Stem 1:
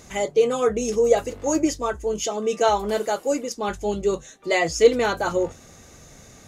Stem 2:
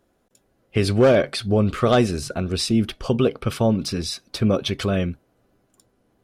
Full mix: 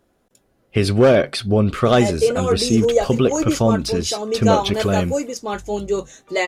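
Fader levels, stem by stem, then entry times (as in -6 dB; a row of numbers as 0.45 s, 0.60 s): +1.0 dB, +2.5 dB; 1.85 s, 0.00 s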